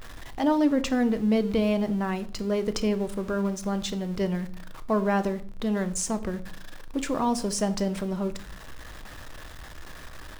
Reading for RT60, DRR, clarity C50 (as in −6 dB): 0.50 s, 10.0 dB, 16.5 dB